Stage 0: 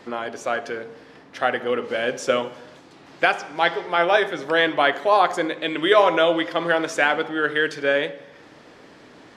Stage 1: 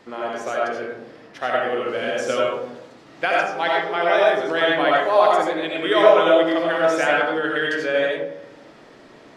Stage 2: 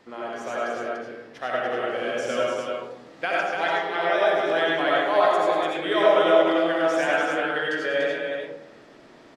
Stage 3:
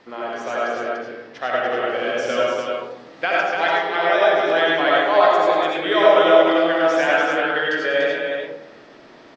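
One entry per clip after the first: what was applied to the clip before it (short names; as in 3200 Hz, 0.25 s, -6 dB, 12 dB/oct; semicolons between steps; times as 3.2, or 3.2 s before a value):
digital reverb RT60 0.83 s, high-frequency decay 0.3×, pre-delay 45 ms, DRR -3.5 dB; gain -4.5 dB
loudspeakers at several distances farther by 36 m -7 dB, 100 m -4 dB; gain -5.5 dB
LPF 6200 Hz 24 dB/oct; low shelf 280 Hz -4.5 dB; gain +5.5 dB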